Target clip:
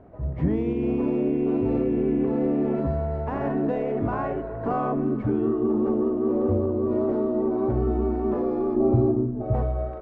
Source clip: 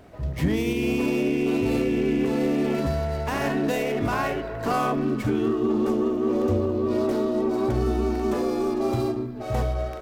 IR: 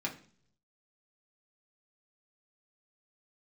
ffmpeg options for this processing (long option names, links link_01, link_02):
-filter_complex "[0:a]lowpass=1000,asettb=1/sr,asplit=3[link_01][link_02][link_03];[link_01]atrim=end=8.764[link_04];[link_02]atrim=start=8.76:end=9.54,asetpts=PTS-STARTPTS,afade=type=in:duration=0.004:curve=qsin,afade=type=out:start_time=0.776:duration=0.004:curve=qsin,tiltshelf=frequency=730:gain=7.5[link_05];[link_03]atrim=start=9.536[link_06];[link_04][link_05]acrossfade=duration=0.004:curve1=hsin:curve2=qsin[link_07];[link_07][link_06]acrossfade=duration=0.004:curve1=qsin:curve2=hsin"